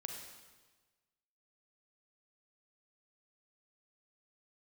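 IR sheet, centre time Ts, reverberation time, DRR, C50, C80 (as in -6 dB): 50 ms, 1.3 s, 2.0 dB, 3.5 dB, 5.0 dB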